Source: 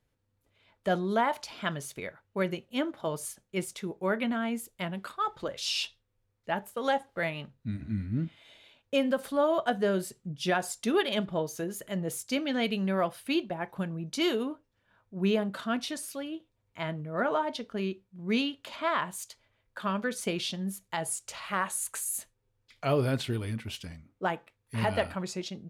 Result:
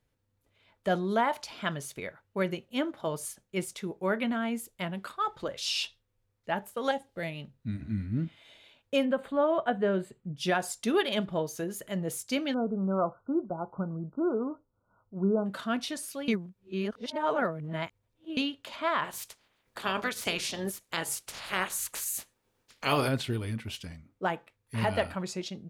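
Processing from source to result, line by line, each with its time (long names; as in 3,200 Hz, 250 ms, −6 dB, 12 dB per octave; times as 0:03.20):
0:06.91–0:07.54: parametric band 1,200 Hz −10.5 dB 1.7 octaves
0:09.05–0:10.37: moving average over 8 samples
0:12.54–0:15.46: linear-phase brick-wall low-pass 1,500 Hz
0:16.28–0:18.37: reverse
0:19.03–0:23.07: ceiling on every frequency bin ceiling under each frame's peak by 20 dB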